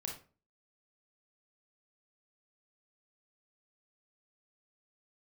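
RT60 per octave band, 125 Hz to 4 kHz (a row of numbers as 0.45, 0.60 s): 0.45, 0.45, 0.40, 0.35, 0.30, 0.25 s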